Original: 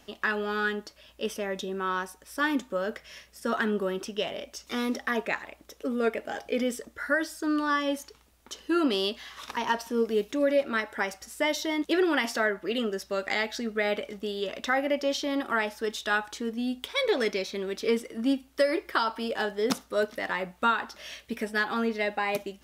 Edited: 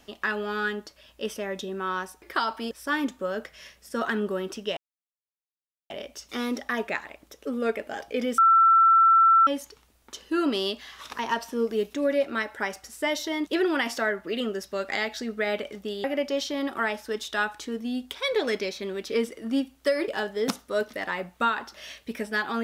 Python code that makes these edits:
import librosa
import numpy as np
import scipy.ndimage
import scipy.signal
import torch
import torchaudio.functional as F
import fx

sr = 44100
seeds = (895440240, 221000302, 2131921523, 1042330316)

y = fx.edit(x, sr, fx.insert_silence(at_s=4.28, length_s=1.13),
    fx.bleep(start_s=6.76, length_s=1.09, hz=1340.0, db=-14.0),
    fx.cut(start_s=14.42, length_s=0.35),
    fx.move(start_s=18.81, length_s=0.49, to_s=2.22), tone=tone)